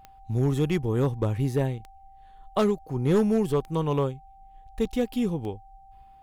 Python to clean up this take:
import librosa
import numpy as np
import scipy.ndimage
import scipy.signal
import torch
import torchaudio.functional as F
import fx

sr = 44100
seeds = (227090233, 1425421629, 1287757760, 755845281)

y = fx.fix_declip(x, sr, threshold_db=-15.5)
y = fx.fix_declick_ar(y, sr, threshold=10.0)
y = fx.notch(y, sr, hz=780.0, q=30.0)